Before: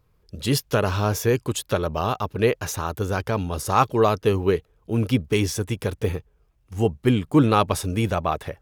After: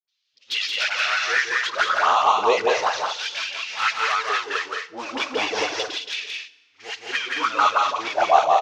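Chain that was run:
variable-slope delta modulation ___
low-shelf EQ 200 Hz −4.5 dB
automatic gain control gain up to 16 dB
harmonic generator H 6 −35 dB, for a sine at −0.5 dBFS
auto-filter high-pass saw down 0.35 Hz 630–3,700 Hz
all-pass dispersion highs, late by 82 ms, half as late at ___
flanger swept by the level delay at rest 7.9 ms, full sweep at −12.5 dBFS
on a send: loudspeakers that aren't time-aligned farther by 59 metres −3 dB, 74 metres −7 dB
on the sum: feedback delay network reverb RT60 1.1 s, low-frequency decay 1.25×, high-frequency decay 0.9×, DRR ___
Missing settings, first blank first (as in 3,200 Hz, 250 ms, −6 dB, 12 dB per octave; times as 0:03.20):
32 kbit/s, 610 Hz, 16 dB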